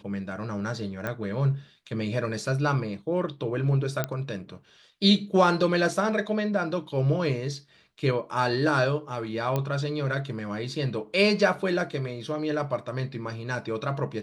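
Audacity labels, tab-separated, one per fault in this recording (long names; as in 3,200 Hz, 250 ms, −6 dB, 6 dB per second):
1.070000	1.070000	click −17 dBFS
4.040000	4.040000	click −12 dBFS
9.560000	9.560000	click −14 dBFS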